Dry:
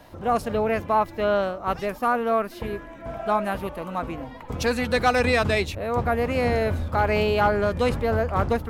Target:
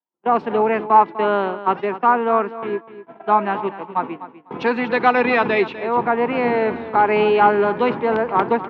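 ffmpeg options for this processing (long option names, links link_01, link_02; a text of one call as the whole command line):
ffmpeg -i in.wav -filter_complex "[0:a]agate=range=-52dB:threshold=-30dB:ratio=16:detection=peak,acrossover=split=280|1500|2300[link_01][link_02][link_03][link_04];[link_01]aeval=exprs='(mod(7.08*val(0)+1,2)-1)/7.08':channel_layout=same[link_05];[link_05][link_02][link_03][link_04]amix=inputs=4:normalize=0,highpass=frequency=180:width=0.5412,highpass=frequency=180:width=1.3066,equalizer=frequency=380:width_type=q:width=4:gain=7,equalizer=frequency=580:width_type=q:width=4:gain=-7,equalizer=frequency=920:width_type=q:width=4:gain=9,lowpass=frequency=3100:width=0.5412,lowpass=frequency=3100:width=1.3066,aecho=1:1:249|498:0.2|0.0359,volume=4dB" out.wav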